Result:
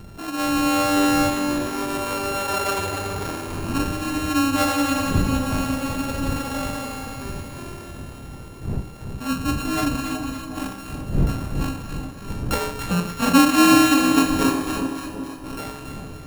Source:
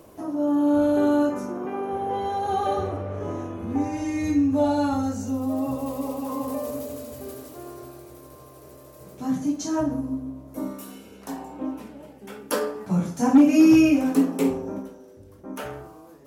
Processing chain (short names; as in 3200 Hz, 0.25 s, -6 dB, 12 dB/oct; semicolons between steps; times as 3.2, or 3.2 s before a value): sample sorter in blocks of 32 samples; wind noise 160 Hz -32 dBFS; split-band echo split 950 Hz, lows 0.372 s, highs 0.282 s, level -6.5 dB